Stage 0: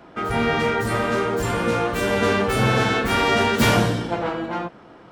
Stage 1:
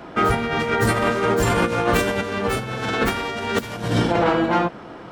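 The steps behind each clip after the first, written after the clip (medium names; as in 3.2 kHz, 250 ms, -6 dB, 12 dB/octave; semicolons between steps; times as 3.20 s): compressor with a negative ratio -24 dBFS, ratio -0.5; trim +4 dB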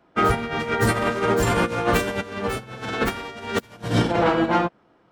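in parallel at +1 dB: peak limiter -15.5 dBFS, peak gain reduction 9 dB; on the sum: upward expansion 2.5:1, over -29 dBFS; trim -3 dB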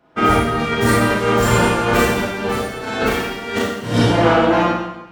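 Schroeder reverb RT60 0.94 s, combs from 26 ms, DRR -5.5 dB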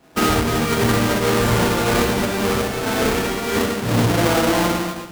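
square wave that keeps the level; compression 2.5:1, threshold -19 dBFS, peak gain reduction 9 dB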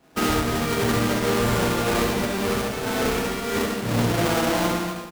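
delay 72 ms -7 dB; trim -5 dB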